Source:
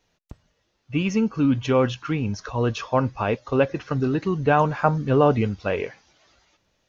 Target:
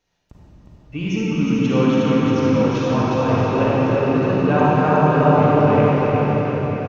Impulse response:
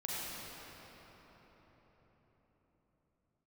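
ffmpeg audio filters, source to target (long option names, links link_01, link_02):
-filter_complex "[0:a]aecho=1:1:360|630|832.5|984.4|1098:0.631|0.398|0.251|0.158|0.1[link_01];[1:a]atrim=start_sample=2205[link_02];[link_01][link_02]afir=irnorm=-1:irlink=0,volume=-1dB"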